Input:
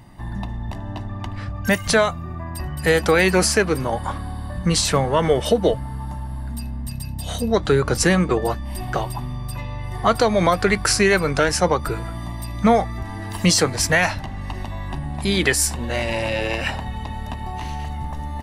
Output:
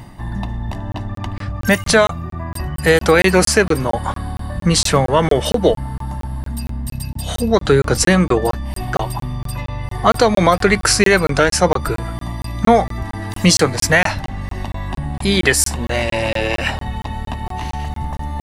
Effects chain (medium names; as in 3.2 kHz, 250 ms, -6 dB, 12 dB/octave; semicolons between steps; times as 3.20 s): reverse; upward compressor, threshold -28 dBFS; reverse; crackling interface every 0.23 s, samples 1024, zero, from 0.92 s; trim +4.5 dB